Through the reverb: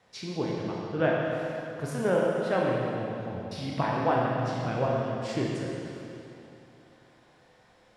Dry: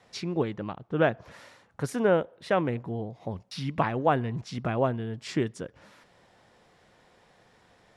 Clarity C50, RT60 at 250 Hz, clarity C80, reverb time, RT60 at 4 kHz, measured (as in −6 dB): −1.5 dB, 2.9 s, 0.0 dB, 2.9 s, 2.6 s